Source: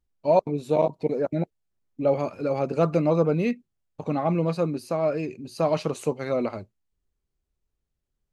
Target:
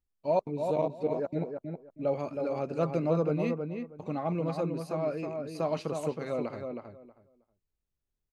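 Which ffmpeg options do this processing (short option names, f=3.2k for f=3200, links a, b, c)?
-filter_complex "[0:a]asplit=2[a][b];[b]adelay=318,lowpass=f=2.1k:p=1,volume=-5dB,asplit=2[c][d];[d]adelay=318,lowpass=f=2.1k:p=1,volume=0.19,asplit=2[e][f];[f]adelay=318,lowpass=f=2.1k:p=1,volume=0.19[g];[a][c][e][g]amix=inputs=4:normalize=0,volume=-7.5dB"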